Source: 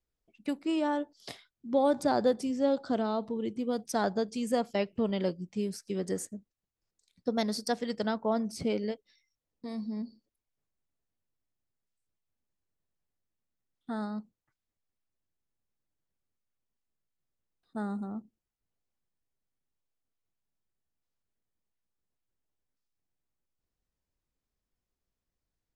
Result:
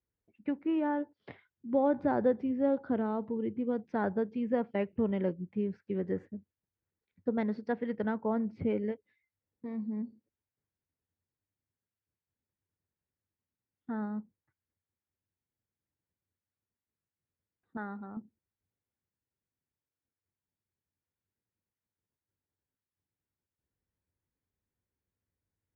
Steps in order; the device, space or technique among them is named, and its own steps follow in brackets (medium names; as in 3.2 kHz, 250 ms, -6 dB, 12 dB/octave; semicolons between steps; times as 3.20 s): bass cabinet (cabinet simulation 65–2100 Hz, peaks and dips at 94 Hz +9 dB, 680 Hz -7 dB, 1.2 kHz -6 dB); 17.77–18.17 s: tilt shelf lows -9.5 dB, about 730 Hz